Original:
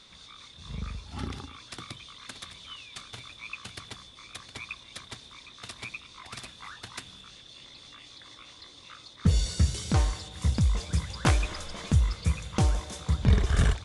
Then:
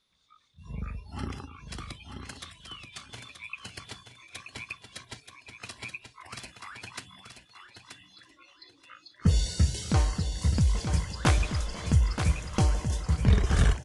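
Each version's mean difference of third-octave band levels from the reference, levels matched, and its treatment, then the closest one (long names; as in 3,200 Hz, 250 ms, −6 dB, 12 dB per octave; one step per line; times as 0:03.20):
4.5 dB: noise reduction from a noise print of the clip's start 21 dB
repeating echo 929 ms, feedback 20%, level −7.5 dB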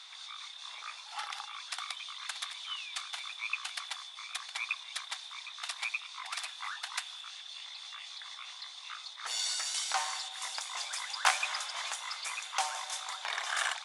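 13.0 dB: in parallel at −9.5 dB: hard clipping −23.5 dBFS, distortion −9 dB
on the sum: elliptic high-pass filter 760 Hz, stop band 80 dB
level +2 dB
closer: first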